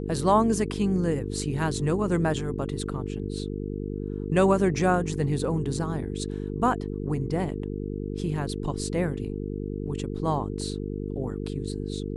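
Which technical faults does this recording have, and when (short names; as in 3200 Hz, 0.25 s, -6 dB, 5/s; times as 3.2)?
buzz 50 Hz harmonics 9 -32 dBFS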